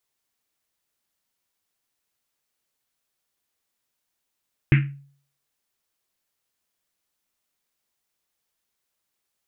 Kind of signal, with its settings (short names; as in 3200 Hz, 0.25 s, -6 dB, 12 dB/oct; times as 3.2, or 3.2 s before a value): Risset drum, pitch 140 Hz, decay 0.51 s, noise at 2100 Hz, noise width 1200 Hz, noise 20%